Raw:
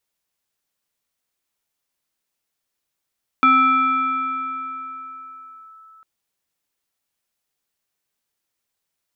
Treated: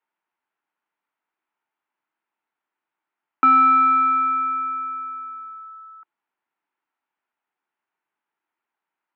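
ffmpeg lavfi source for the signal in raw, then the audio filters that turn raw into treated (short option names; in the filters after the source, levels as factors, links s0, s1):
-f lavfi -i "aevalsrc='0.335*pow(10,-3*t/4.26)*sin(2*PI*1310*t+0.68*clip(1-t/2.32,0,1)*sin(2*PI*0.8*1310*t))':d=2.6:s=44100"
-filter_complex "[0:a]acrossover=split=820[s0][s1];[s1]asoftclip=type=tanh:threshold=0.141[s2];[s0][s2]amix=inputs=2:normalize=0,highpass=270,equalizer=f=320:t=q:w=4:g=4,equalizer=f=520:t=q:w=4:g=-7,equalizer=f=900:t=q:w=4:g=9,equalizer=f=1400:t=q:w=4:g=5,lowpass=f=2500:w=0.5412,lowpass=f=2500:w=1.3066"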